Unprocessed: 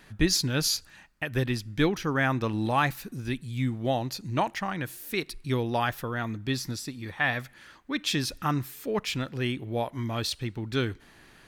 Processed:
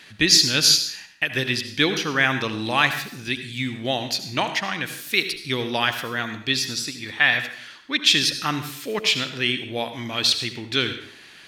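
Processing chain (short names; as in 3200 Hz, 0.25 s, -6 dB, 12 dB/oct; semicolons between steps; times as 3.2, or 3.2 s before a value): weighting filter D; on a send: reverb RT60 0.60 s, pre-delay 63 ms, DRR 9 dB; on the sum: gain +2 dB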